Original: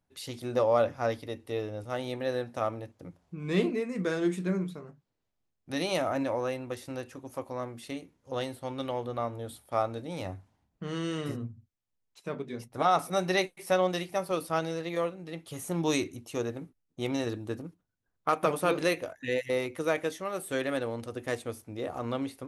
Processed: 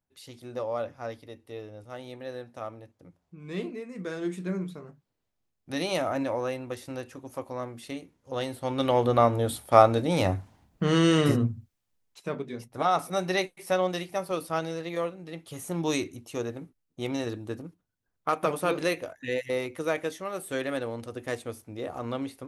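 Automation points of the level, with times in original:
0:03.82 −7 dB
0:04.86 +1 dB
0:08.35 +1 dB
0:09.07 +12 dB
0:11.42 +12 dB
0:12.64 0 dB

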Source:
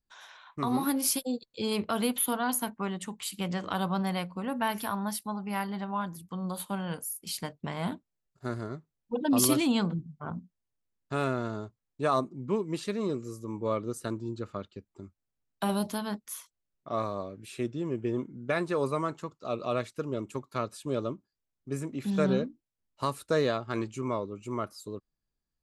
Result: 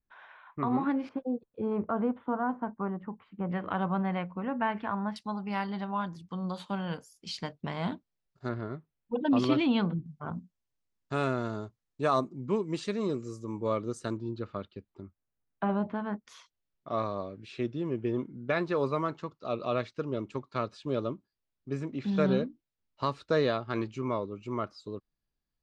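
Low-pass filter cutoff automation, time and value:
low-pass filter 24 dB per octave
2,400 Hz
from 0:01.09 1,400 Hz
from 0:03.50 2,400 Hz
from 0:05.16 5,700 Hz
from 0:08.49 3,500 Hz
from 0:10.06 7,600 Hz
from 0:14.17 4,500 Hz
from 0:15.02 2,100 Hz
from 0:16.25 5,100 Hz

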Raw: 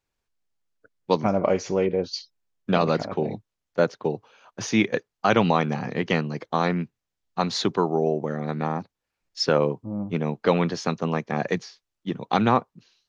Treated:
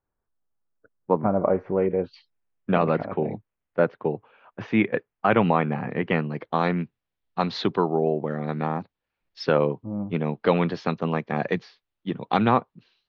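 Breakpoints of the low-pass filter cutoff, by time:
low-pass filter 24 dB per octave
0:01.60 1,500 Hz
0:02.15 2,600 Hz
0:06.09 2,600 Hz
0:06.68 3,900 Hz

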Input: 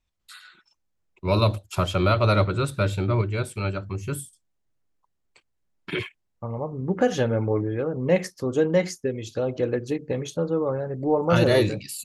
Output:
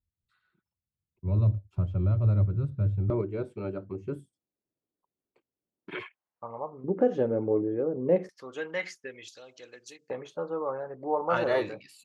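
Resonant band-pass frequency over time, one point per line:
resonant band-pass, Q 1.3
100 Hz
from 0:03.10 350 Hz
from 0:05.91 1,000 Hz
from 0:06.84 380 Hz
from 0:08.29 2,000 Hz
from 0:09.28 6,000 Hz
from 0:10.10 1,000 Hz

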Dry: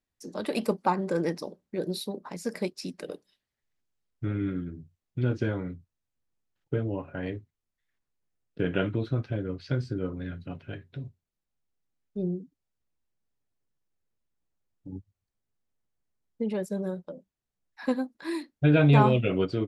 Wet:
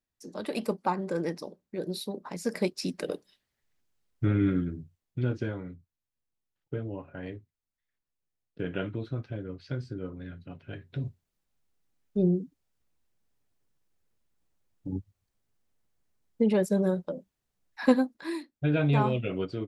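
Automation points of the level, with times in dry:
0:01.80 −3 dB
0:02.97 +5 dB
0:04.60 +5 dB
0:05.59 −5.5 dB
0:10.58 −5.5 dB
0:11.06 +6 dB
0:17.94 +6 dB
0:18.50 −5.5 dB

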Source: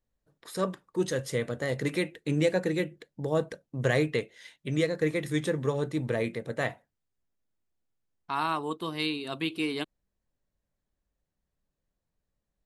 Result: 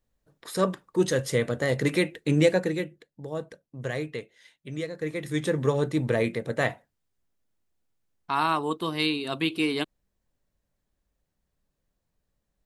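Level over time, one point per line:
0:02.47 +5 dB
0:03.09 −6 dB
0:04.94 −6 dB
0:05.61 +4.5 dB

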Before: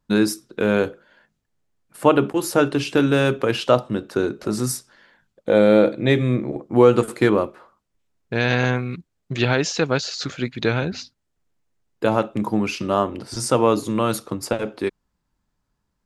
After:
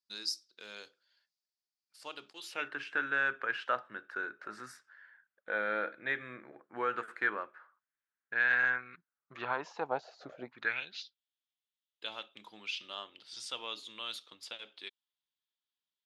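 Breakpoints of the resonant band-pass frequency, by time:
resonant band-pass, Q 5.2
0:02.30 4,800 Hz
0:02.74 1,600 Hz
0:08.93 1,600 Hz
0:10.38 590 Hz
0:10.87 3,400 Hz

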